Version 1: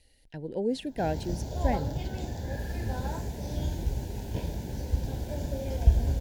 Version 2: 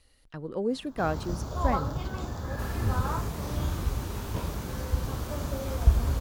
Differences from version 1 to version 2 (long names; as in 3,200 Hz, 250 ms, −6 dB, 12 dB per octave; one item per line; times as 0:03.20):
second sound +8.0 dB
master: remove Butterworth band-reject 1,200 Hz, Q 1.6